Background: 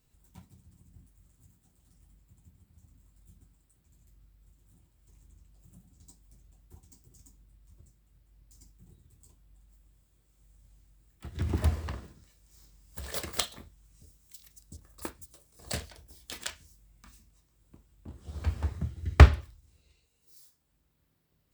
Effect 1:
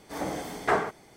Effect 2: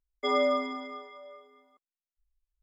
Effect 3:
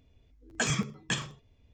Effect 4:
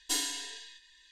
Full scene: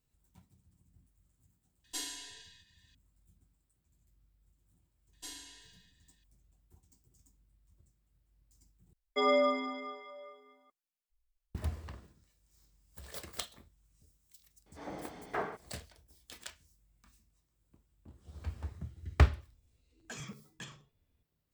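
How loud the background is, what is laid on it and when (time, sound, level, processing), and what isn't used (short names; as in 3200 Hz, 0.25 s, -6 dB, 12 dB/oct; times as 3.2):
background -9.5 dB
1.84 add 4 -8.5 dB
5.13 add 4 -15.5 dB + dark delay 71 ms, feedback 58%, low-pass 2700 Hz, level -9 dB
8.93 replace with 2 -1.5 dB
14.66 add 1 -11 dB + air absorption 110 m
19.5 add 3 -14.5 dB + soft clip -22.5 dBFS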